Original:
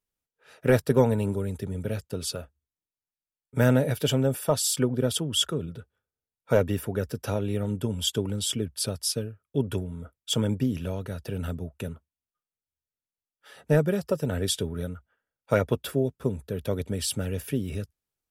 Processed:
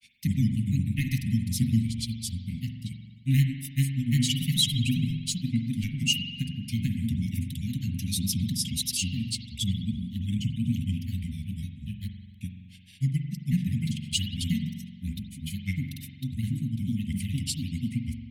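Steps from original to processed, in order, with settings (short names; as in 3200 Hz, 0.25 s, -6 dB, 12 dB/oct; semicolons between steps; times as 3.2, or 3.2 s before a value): grains 0.1 s, grains 20/s, spray 0.806 s, pitch spread up and down by 3 st; Chebyshev band-stop 250–2100 Hz, order 5; spring tank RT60 1.4 s, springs 44 ms, chirp 50 ms, DRR 5 dB; gain +2.5 dB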